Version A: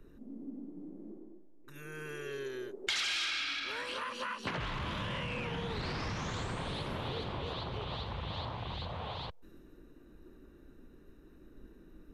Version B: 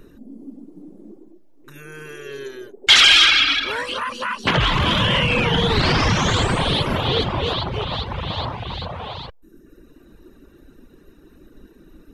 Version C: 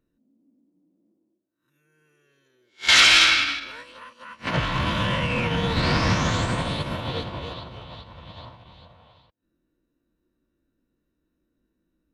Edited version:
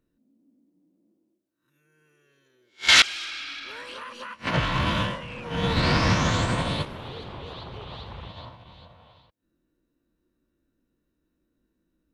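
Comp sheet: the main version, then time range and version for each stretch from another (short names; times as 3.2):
C
3.02–4.34 from A
5.11–5.53 from A, crossfade 0.24 s
6.85–8.28 from A
not used: B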